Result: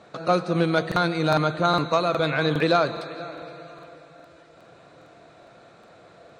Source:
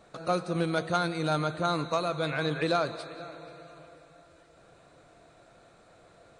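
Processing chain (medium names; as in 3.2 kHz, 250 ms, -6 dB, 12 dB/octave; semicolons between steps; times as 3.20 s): band-pass 100–5600 Hz; crackling interface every 0.41 s, samples 2048, repeat, from 0.87 s; trim +7 dB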